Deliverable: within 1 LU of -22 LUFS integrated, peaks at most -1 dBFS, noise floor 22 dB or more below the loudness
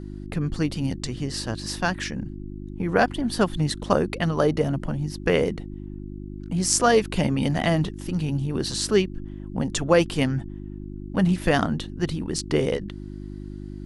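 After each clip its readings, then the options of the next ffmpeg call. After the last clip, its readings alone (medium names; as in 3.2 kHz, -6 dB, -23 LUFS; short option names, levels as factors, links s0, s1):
hum 50 Hz; highest harmonic 350 Hz; hum level -34 dBFS; loudness -24.5 LUFS; peak level -2.0 dBFS; loudness target -22.0 LUFS
-> -af "bandreject=f=50:t=h:w=4,bandreject=f=100:t=h:w=4,bandreject=f=150:t=h:w=4,bandreject=f=200:t=h:w=4,bandreject=f=250:t=h:w=4,bandreject=f=300:t=h:w=4,bandreject=f=350:t=h:w=4"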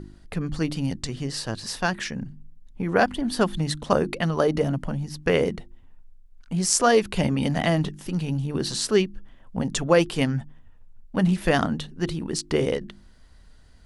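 hum not found; loudness -25.0 LUFS; peak level -2.0 dBFS; loudness target -22.0 LUFS
-> -af "volume=1.41,alimiter=limit=0.891:level=0:latency=1"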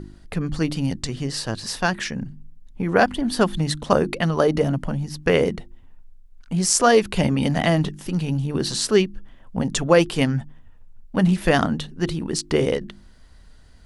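loudness -22.0 LUFS; peak level -1.0 dBFS; noise floor -47 dBFS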